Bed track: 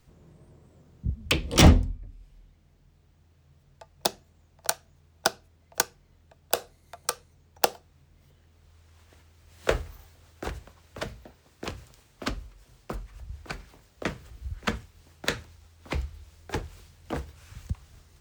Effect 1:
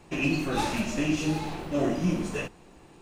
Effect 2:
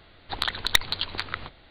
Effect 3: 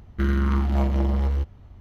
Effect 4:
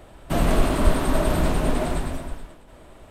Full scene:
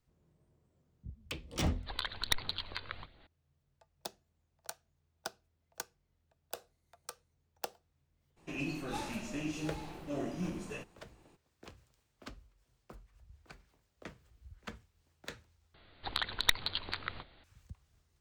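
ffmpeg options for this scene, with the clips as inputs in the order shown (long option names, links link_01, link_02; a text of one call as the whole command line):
ffmpeg -i bed.wav -i cue0.wav -i cue1.wav -filter_complex "[2:a]asplit=2[link_01][link_02];[0:a]volume=-17.5dB[link_03];[link_01]aphaser=in_gain=1:out_gain=1:delay=2:decay=0.39:speed=1.2:type=sinusoidal[link_04];[1:a]highshelf=frequency=10000:gain=4[link_05];[link_03]asplit=2[link_06][link_07];[link_06]atrim=end=15.744[link_08];[link_02]atrim=end=1.7,asetpts=PTS-STARTPTS,volume=-7.5dB[link_09];[link_07]atrim=start=17.436[link_10];[link_04]atrim=end=1.7,asetpts=PTS-STARTPTS,volume=-11dB,afade=type=in:duration=0.004:curve=hsin,afade=type=out:start_time=1.696:duration=0.004:curve=hsin,adelay=1570[link_11];[link_05]atrim=end=3.01,asetpts=PTS-STARTPTS,volume=-11.5dB,afade=type=in:duration=0.02,afade=type=out:start_time=2.99:duration=0.02,adelay=8360[link_12];[link_08][link_09]acrossfade=duration=0.004:curve1=hsin:curve2=hsin[link_13];[link_13][link_10]acrossfade=duration=0.004:curve1=hsin:curve2=hsin[link_14];[link_14][link_11][link_12]amix=inputs=3:normalize=0" out.wav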